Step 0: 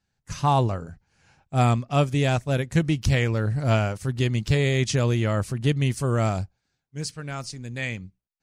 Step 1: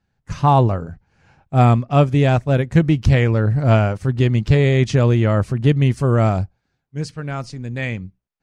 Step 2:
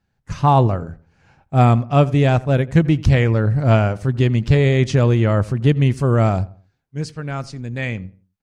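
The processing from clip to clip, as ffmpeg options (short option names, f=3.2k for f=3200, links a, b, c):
-af "lowpass=f=1.6k:p=1,volume=7.5dB"
-filter_complex "[0:a]asplit=2[a][b];[b]adelay=86,lowpass=f=1.8k:p=1,volume=-19.5dB,asplit=2[c][d];[d]adelay=86,lowpass=f=1.8k:p=1,volume=0.34,asplit=2[e][f];[f]adelay=86,lowpass=f=1.8k:p=1,volume=0.34[g];[a][c][e][g]amix=inputs=4:normalize=0"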